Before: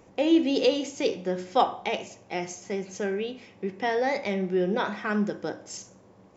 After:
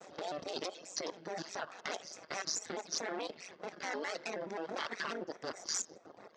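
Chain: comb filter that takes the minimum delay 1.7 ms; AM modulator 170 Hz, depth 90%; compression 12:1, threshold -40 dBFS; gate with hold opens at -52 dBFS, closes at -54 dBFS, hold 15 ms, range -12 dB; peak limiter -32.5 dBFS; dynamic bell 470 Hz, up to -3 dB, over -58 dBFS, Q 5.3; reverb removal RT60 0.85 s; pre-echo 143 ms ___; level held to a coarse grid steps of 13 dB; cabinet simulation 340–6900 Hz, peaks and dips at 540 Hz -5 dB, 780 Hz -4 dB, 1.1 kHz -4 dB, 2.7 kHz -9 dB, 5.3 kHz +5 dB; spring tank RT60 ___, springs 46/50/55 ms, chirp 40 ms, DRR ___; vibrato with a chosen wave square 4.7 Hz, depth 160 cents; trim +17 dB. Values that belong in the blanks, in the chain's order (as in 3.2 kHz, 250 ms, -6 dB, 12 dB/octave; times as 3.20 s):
-20 dB, 1.5 s, 20 dB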